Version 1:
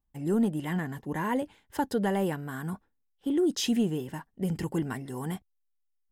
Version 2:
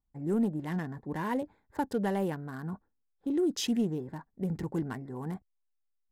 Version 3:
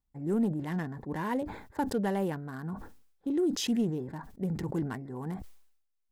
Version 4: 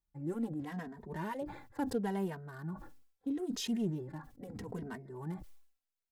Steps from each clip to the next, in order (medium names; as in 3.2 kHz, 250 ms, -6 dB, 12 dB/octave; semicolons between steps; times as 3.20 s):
local Wiener filter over 15 samples; trim -2.5 dB
decay stretcher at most 79 dB/s
endless flanger 2.9 ms -0.77 Hz; trim -2.5 dB